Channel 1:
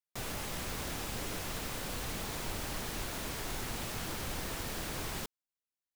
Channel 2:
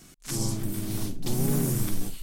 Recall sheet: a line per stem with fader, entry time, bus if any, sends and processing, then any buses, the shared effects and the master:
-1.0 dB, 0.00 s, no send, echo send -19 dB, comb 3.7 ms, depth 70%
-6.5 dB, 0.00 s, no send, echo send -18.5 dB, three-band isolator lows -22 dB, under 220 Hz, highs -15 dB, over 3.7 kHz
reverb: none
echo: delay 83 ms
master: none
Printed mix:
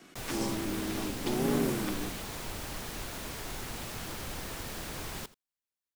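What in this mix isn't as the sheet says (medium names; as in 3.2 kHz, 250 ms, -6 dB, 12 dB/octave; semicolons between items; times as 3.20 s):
stem 1: missing comb 3.7 ms, depth 70%; stem 2 -6.5 dB -> +3.0 dB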